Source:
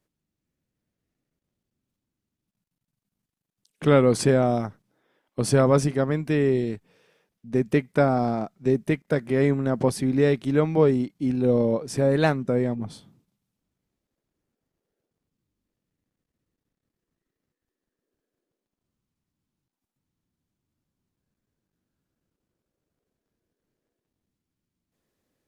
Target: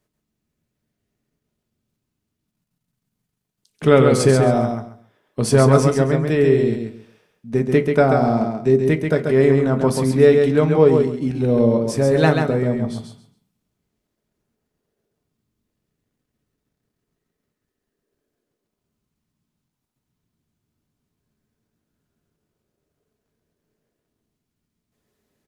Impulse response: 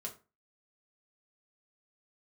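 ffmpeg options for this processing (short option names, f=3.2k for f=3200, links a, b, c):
-filter_complex "[0:a]aecho=1:1:136|272|408:0.562|0.118|0.0248,asplit=2[a][b];[1:a]atrim=start_sample=2205[c];[b][c]afir=irnorm=-1:irlink=0,volume=0dB[d];[a][d]amix=inputs=2:normalize=0"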